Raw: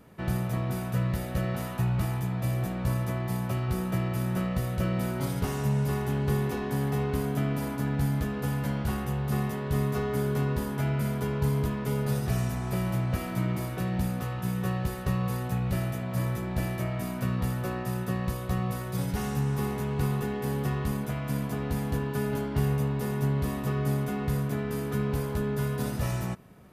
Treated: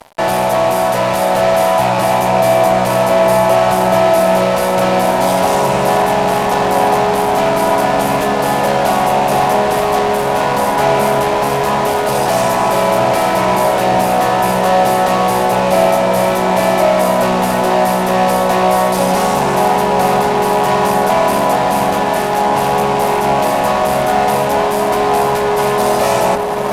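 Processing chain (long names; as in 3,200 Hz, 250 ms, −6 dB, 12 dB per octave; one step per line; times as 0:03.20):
loose part that buzzes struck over −27 dBFS, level −38 dBFS
reversed playback
upward compression, threshold −33 dBFS
reversed playback
high-pass filter 370 Hz 12 dB per octave
fuzz pedal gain 46 dB, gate −52 dBFS
low-pass filter 12,000 Hz 12 dB per octave
flat-topped bell 750 Hz +10 dB 1 octave
on a send: feedback echo with a low-pass in the loop 916 ms, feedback 83%, low-pass 2,000 Hz, level −7 dB
on the sum: level −4 dB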